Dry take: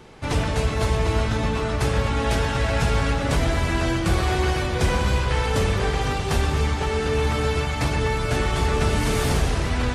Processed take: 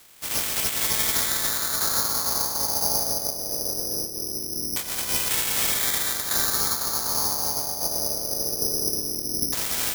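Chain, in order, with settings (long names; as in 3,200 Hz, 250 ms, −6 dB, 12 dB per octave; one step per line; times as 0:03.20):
ceiling on every frequency bin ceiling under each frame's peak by 21 dB
0:03.26–0:05.09: compressor whose output falls as the input rises −23 dBFS, ratio −0.5
auto-filter low-pass saw down 0.21 Hz 290–3,900 Hz
bad sample-rate conversion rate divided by 8×, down filtered, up zero stuff
level −13.5 dB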